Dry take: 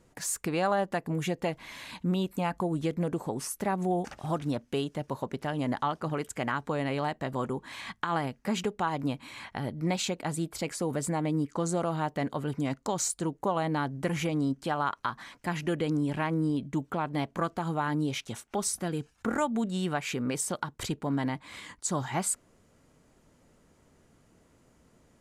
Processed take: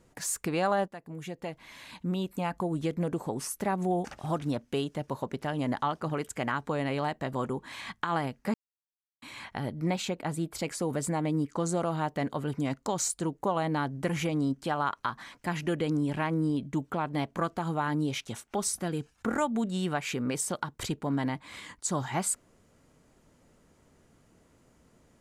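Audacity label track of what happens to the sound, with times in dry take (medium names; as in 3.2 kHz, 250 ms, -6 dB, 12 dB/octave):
0.880000	3.580000	fade in equal-power, from -14.5 dB
8.540000	9.220000	mute
9.900000	10.520000	peaking EQ 6.8 kHz -5.5 dB 2 oct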